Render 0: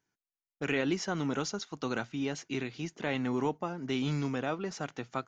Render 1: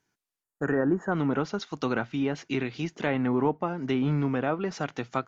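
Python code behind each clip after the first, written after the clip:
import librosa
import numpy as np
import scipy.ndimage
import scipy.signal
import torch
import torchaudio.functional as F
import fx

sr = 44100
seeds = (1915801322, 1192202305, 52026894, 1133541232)

y = fx.spec_box(x, sr, start_s=0.43, length_s=0.69, low_hz=1900.0, high_hz=6500.0, gain_db=-23)
y = fx.env_lowpass_down(y, sr, base_hz=1600.0, full_db=-27.5)
y = y * librosa.db_to_amplitude(6.0)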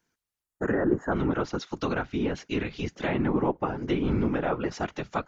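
y = fx.whisperise(x, sr, seeds[0])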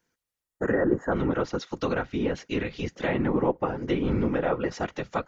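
y = fx.small_body(x, sr, hz=(510.0, 1900.0), ring_ms=45, db=7)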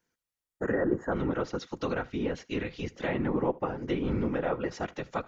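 y = x + 10.0 ** (-23.0 / 20.0) * np.pad(x, (int(76 * sr / 1000.0), 0))[:len(x)]
y = y * librosa.db_to_amplitude(-4.0)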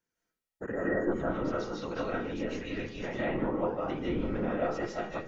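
y = fx.rev_freeverb(x, sr, rt60_s=0.51, hf_ratio=0.5, predelay_ms=115, drr_db=-5.5)
y = y * librosa.db_to_amplitude(-7.5)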